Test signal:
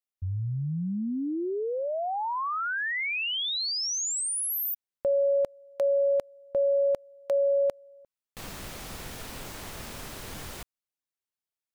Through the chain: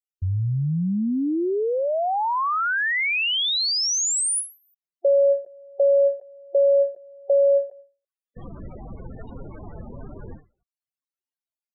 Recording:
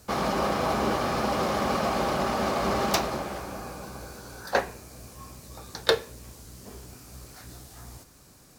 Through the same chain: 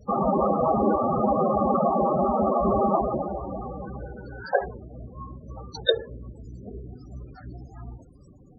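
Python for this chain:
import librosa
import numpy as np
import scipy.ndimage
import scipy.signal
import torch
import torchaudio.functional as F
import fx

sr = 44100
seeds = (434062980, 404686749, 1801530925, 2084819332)

y = fx.spec_topn(x, sr, count=16)
y = fx.end_taper(y, sr, db_per_s=190.0)
y = F.gain(torch.from_numpy(y), 7.0).numpy()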